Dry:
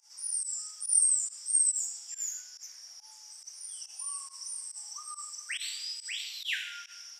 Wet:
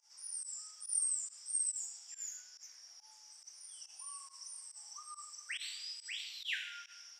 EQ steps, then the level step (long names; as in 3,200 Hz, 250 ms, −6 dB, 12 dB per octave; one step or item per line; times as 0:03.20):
high-shelf EQ 8,400 Hz −10.5 dB
−4.5 dB